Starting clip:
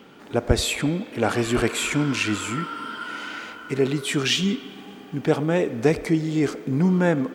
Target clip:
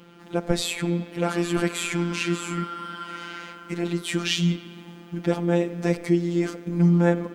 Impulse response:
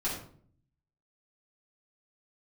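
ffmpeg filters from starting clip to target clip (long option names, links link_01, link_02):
-af "equalizer=frequency=240:width=3.7:gain=10,afftfilt=real='hypot(re,im)*cos(PI*b)':imag='0':win_size=1024:overlap=0.75"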